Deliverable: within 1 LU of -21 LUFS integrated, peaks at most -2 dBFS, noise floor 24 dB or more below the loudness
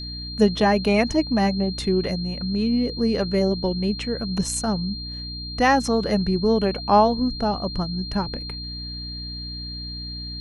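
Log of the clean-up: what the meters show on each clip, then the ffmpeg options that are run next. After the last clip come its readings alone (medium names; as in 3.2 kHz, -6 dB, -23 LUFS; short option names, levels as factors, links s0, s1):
hum 60 Hz; highest harmonic 300 Hz; hum level -33 dBFS; steady tone 4.2 kHz; tone level -33 dBFS; loudness -23.0 LUFS; peak level -5.0 dBFS; loudness target -21.0 LUFS
-> -af "bandreject=f=60:t=h:w=6,bandreject=f=120:t=h:w=6,bandreject=f=180:t=h:w=6,bandreject=f=240:t=h:w=6,bandreject=f=300:t=h:w=6"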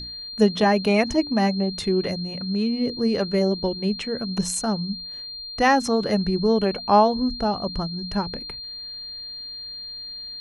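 hum not found; steady tone 4.2 kHz; tone level -33 dBFS
-> -af "bandreject=f=4200:w=30"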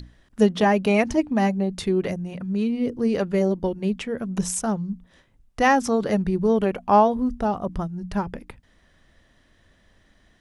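steady tone not found; loudness -23.0 LUFS; peak level -5.0 dBFS; loudness target -21.0 LUFS
-> -af "volume=1.26"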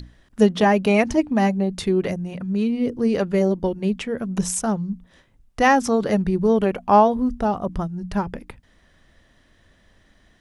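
loudness -21.0 LUFS; peak level -3.0 dBFS; noise floor -59 dBFS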